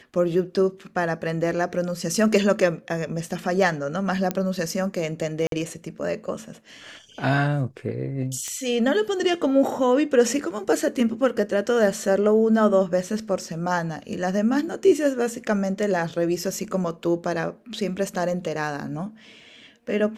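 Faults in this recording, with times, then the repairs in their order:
4.31 pop -11 dBFS
5.47–5.52 gap 52 ms
8.48 pop -18 dBFS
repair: de-click; interpolate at 5.47, 52 ms

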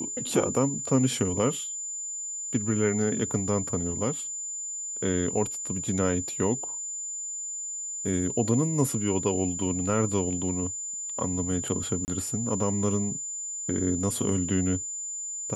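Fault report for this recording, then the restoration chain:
tone 7100 Hz -32 dBFS
12.05–12.08 gap 29 ms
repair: notch 7100 Hz, Q 30; interpolate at 12.05, 29 ms

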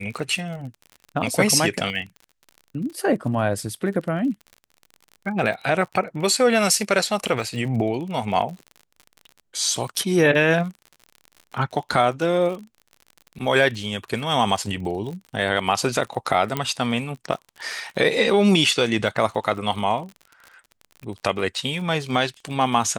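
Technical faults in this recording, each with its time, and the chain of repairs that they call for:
crackle 45/s -32 dBFS
16.57 pop -9 dBFS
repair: de-click

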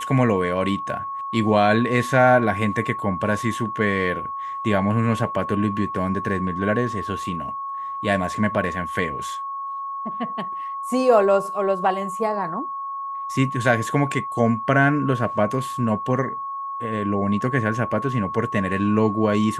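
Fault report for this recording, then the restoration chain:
tone 1100 Hz -27 dBFS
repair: notch 1100 Hz, Q 30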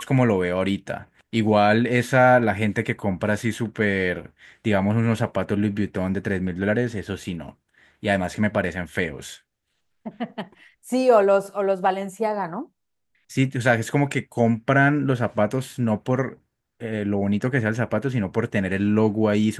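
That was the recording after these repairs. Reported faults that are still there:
none

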